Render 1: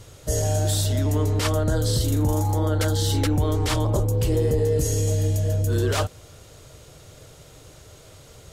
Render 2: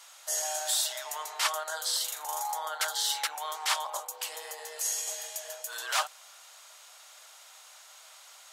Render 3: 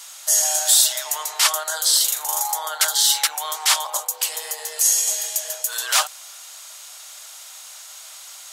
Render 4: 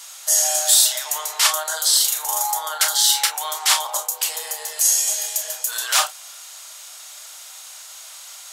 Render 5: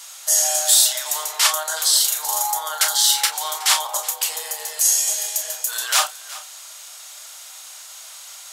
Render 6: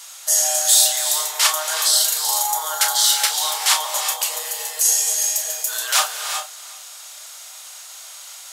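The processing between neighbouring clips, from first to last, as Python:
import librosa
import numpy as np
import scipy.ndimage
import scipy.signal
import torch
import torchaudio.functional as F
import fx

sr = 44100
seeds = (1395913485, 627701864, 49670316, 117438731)

y1 = scipy.signal.sosfilt(scipy.signal.butter(6, 770.0, 'highpass', fs=sr, output='sos'), x)
y2 = fx.high_shelf(y1, sr, hz=3500.0, db=10.5)
y2 = y2 * librosa.db_to_amplitude(5.5)
y3 = fx.room_early_taps(y2, sr, ms=(31, 44), db=(-8.5, -15.0))
y4 = y3 + 10.0 ** (-18.0 / 20.0) * np.pad(y3, (int(370 * sr / 1000.0), 0))[:len(y3)]
y5 = fx.rev_gated(y4, sr, seeds[0], gate_ms=420, shape='rising', drr_db=6.5)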